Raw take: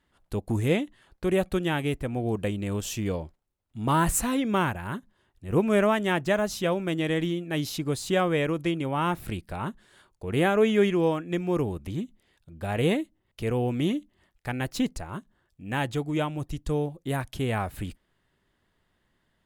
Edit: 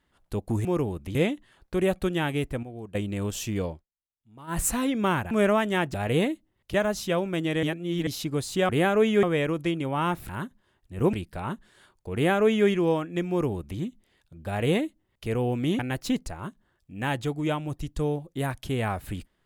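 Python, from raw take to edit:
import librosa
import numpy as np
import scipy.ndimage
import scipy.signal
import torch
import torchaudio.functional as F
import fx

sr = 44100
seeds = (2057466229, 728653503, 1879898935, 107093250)

y = fx.edit(x, sr, fx.clip_gain(start_s=2.13, length_s=0.32, db=-11.5),
    fx.fade_down_up(start_s=3.19, length_s=0.93, db=-22.5, fade_s=0.15),
    fx.move(start_s=4.81, length_s=0.84, to_s=9.29),
    fx.reverse_span(start_s=7.17, length_s=0.44),
    fx.duplicate(start_s=10.3, length_s=0.54, to_s=8.23),
    fx.duplicate(start_s=11.45, length_s=0.5, to_s=0.65),
    fx.duplicate(start_s=12.63, length_s=0.8, to_s=6.28),
    fx.cut(start_s=13.95, length_s=0.54), tone=tone)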